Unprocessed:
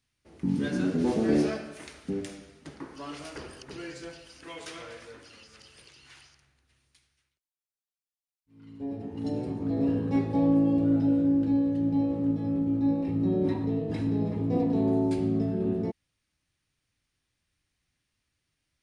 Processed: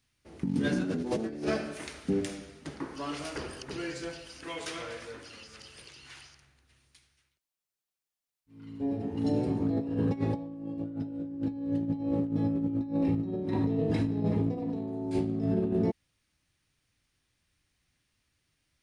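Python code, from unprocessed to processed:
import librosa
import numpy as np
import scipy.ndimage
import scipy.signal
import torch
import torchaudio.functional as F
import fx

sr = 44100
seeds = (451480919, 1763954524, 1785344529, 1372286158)

y = fx.over_compress(x, sr, threshold_db=-29.0, ratio=-0.5)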